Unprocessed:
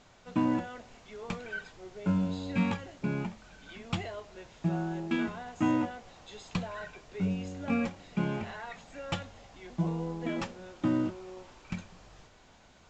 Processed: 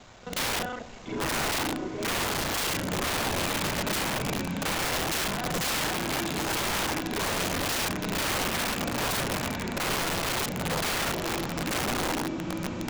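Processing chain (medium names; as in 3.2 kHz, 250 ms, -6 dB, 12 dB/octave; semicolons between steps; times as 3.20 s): time reversed locally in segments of 33 ms; echo that smears into a reverb 960 ms, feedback 52%, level -5 dB; integer overflow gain 32.5 dB; trim +9 dB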